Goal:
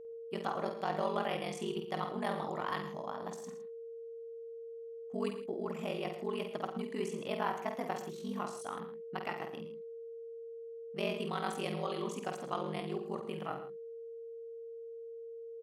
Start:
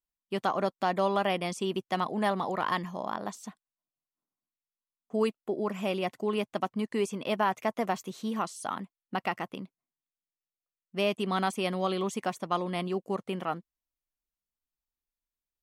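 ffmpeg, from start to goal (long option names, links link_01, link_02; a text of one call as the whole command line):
ffmpeg -i in.wav -af "aeval=exprs='val(0)*sin(2*PI*23*n/s)':channel_layout=same,aeval=exprs='val(0)+0.00891*sin(2*PI*460*n/s)':channel_layout=same,aecho=1:1:50|89|112|126|162:0.473|0.141|0.178|0.158|0.133,volume=-5.5dB" out.wav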